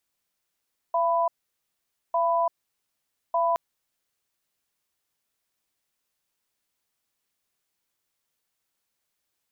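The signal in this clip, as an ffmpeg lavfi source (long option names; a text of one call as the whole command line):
ffmpeg -f lavfi -i "aevalsrc='0.0708*(sin(2*PI*678*t)+sin(2*PI*994*t))*clip(min(mod(t,1.2),0.34-mod(t,1.2))/0.005,0,1)':duration=2.62:sample_rate=44100" out.wav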